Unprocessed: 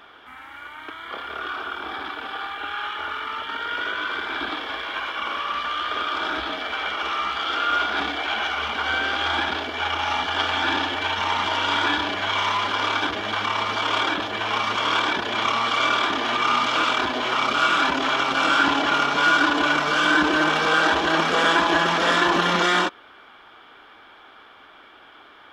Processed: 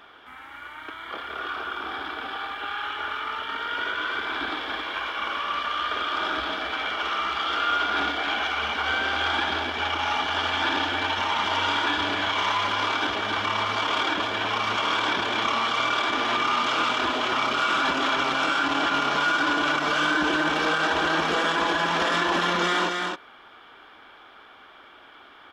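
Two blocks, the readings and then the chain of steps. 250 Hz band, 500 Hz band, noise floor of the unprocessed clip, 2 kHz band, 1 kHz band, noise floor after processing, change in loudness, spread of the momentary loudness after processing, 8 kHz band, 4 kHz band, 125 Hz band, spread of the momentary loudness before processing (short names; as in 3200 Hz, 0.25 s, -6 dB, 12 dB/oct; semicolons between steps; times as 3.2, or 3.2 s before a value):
-3.0 dB, -2.5 dB, -48 dBFS, -2.5 dB, -2.5 dB, -49 dBFS, -2.5 dB, 9 LU, -3.0 dB, -2.0 dB, -2.5 dB, 11 LU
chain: on a send: echo 0.268 s -6.5 dB; on the sum: limiter -12 dBFS, peak gain reduction 7.5 dB; gain -2 dB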